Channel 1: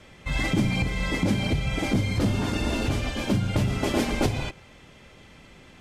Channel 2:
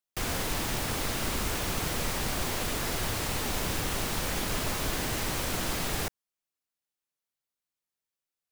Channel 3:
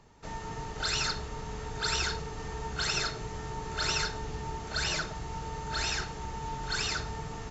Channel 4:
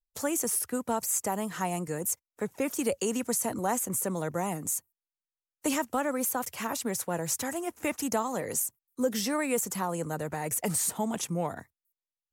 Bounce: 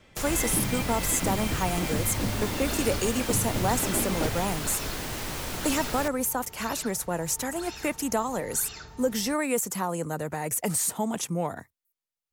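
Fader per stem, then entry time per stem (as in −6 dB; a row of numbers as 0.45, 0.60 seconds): −6.5, −2.5, −10.0, +2.0 decibels; 0.00, 0.00, 1.85, 0.00 seconds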